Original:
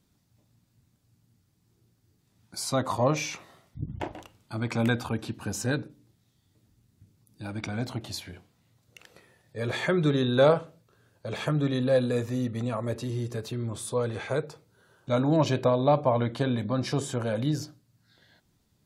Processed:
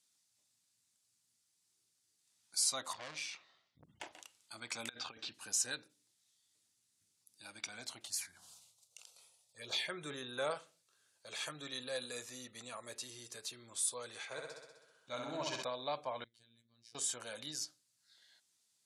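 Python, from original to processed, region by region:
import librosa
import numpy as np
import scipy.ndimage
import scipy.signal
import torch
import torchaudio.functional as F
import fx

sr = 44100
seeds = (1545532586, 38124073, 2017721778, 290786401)

y = fx.chain(x, sr, fx.lowpass(hz=4600.0, slope=24),
    fx.low_shelf(hz=220.0, db=6.5),
    fx.tube_stage(drive_db=28.0, bias=0.7), at=(2.93, 3.84))
y = fx.chain(y, sr, fx.lowpass(hz=5000.0, slope=24),
    fx.peak_eq(hz=950.0, db=-6.5, octaves=0.21),
    fx.over_compress(threshold_db=-32.0, ratio=-0.5), at=(4.89, 5.33))
y = fx.chain(y, sr, fx.low_shelf(hz=60.0, db=10.5),
    fx.env_phaser(low_hz=280.0, high_hz=4700.0, full_db=-21.5),
    fx.sustainer(db_per_s=44.0), at=(8.07, 10.51))
y = fx.chain(y, sr, fx.lowpass(hz=2600.0, slope=6),
    fx.room_flutter(wall_m=11.0, rt60_s=1.1), at=(14.25, 15.63))
y = fx.chain(y, sr, fx.tone_stack(knobs='10-0-1'),
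    fx.robotise(hz=116.0), at=(16.24, 16.95))
y = scipy.signal.sosfilt(scipy.signal.butter(4, 10000.0, 'lowpass', fs=sr, output='sos'), y)
y = np.diff(y, prepend=0.0)
y = F.gain(torch.from_numpy(y), 3.5).numpy()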